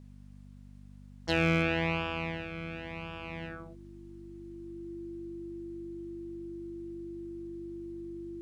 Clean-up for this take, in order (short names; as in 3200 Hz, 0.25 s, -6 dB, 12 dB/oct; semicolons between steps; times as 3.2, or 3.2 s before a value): clip repair -16.5 dBFS; de-hum 49.1 Hz, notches 5; notch 340 Hz, Q 30; expander -43 dBFS, range -21 dB